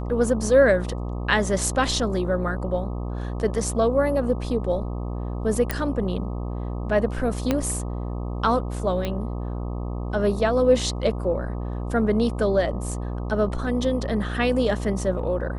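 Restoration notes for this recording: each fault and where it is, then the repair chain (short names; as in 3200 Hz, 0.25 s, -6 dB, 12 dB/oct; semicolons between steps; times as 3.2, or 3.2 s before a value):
buzz 60 Hz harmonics 21 -29 dBFS
5.71 pop -9 dBFS
7.51 pop -8 dBFS
9.05 pop -14 dBFS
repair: de-click; de-hum 60 Hz, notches 21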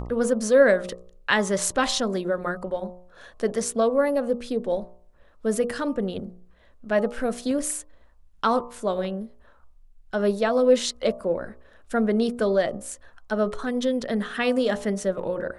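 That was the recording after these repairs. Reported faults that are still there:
7.51 pop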